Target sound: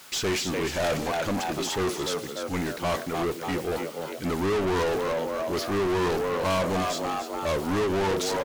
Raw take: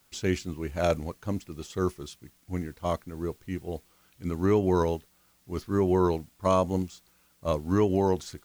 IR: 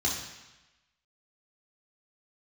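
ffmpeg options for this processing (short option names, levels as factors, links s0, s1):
-filter_complex "[0:a]asplit=5[s0][s1][s2][s3][s4];[s1]adelay=294,afreqshift=75,volume=0.224[s5];[s2]adelay=588,afreqshift=150,volume=0.101[s6];[s3]adelay=882,afreqshift=225,volume=0.0452[s7];[s4]adelay=1176,afreqshift=300,volume=0.0204[s8];[s0][s5][s6][s7][s8]amix=inputs=5:normalize=0,asplit=2[s9][s10];[1:a]atrim=start_sample=2205,asetrate=83790,aresample=44100[s11];[s10][s11]afir=irnorm=-1:irlink=0,volume=0.0631[s12];[s9][s12]amix=inputs=2:normalize=0,asplit=2[s13][s14];[s14]highpass=f=720:p=1,volume=50.1,asoftclip=type=tanh:threshold=0.251[s15];[s13][s15]amix=inputs=2:normalize=0,lowpass=f=6800:p=1,volume=0.501,volume=0.447"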